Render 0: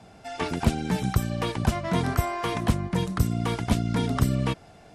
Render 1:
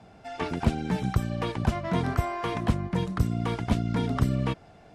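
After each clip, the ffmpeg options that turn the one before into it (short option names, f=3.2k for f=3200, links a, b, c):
-af "lowpass=f=3.3k:p=1,volume=-1.5dB"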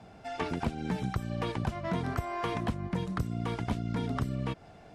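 -af "acompressor=threshold=-28dB:ratio=6"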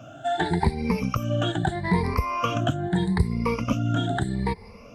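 -af "afftfilt=real='re*pow(10,23/40*sin(2*PI*(0.88*log(max(b,1)*sr/1024/100)/log(2)-(0.79)*(pts-256)/sr)))':imag='im*pow(10,23/40*sin(2*PI*(0.88*log(max(b,1)*sr/1024/100)/log(2)-(0.79)*(pts-256)/sr)))':win_size=1024:overlap=0.75,volume=3.5dB"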